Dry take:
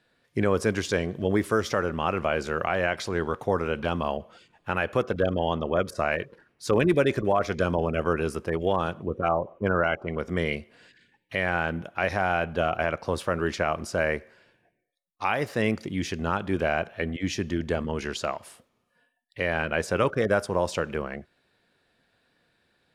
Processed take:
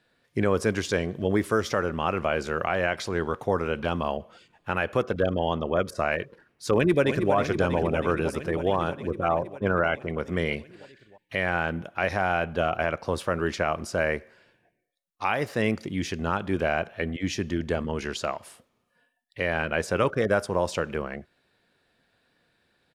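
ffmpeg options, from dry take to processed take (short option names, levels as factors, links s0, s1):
-filter_complex "[0:a]asplit=2[s0][s1];[s1]afade=t=in:st=6.73:d=0.01,afade=t=out:st=7.33:d=0.01,aecho=0:1:320|640|960|1280|1600|1920|2240|2560|2880|3200|3520|3840:0.375837|0.30067|0.240536|0.192429|0.153943|0.123154|0.0985235|0.0788188|0.0630551|0.050444|0.0403552|0.0322842[s2];[s0][s2]amix=inputs=2:normalize=0"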